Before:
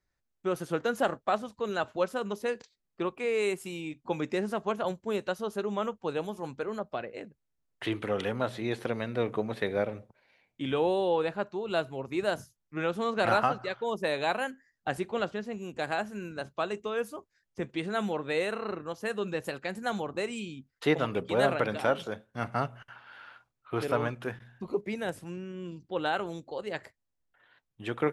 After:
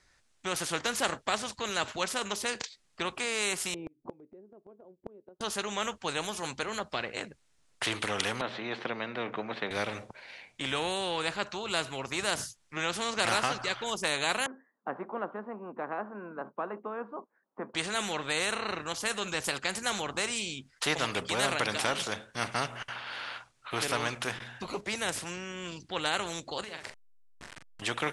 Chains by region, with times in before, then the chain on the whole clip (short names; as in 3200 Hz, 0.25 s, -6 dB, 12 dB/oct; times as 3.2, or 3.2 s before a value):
3.74–5.41 synth low-pass 370 Hz, resonance Q 3.2 + low shelf 280 Hz -10.5 dB + flipped gate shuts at -29 dBFS, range -32 dB
8.41–9.71 HPF 170 Hz 24 dB/oct + tape spacing loss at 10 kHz 40 dB
14.46–17.75 Chebyshev band-pass 220–1100 Hz, order 3 + air absorption 170 m
26.64–27.82 level-crossing sampler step -53 dBFS + compressor 8:1, threshold -50 dBFS + doubler 42 ms -7 dB
whole clip: steep low-pass 10000 Hz 36 dB/oct; tilt shelf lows -5 dB, about 820 Hz; spectral compressor 2:1; gain +1.5 dB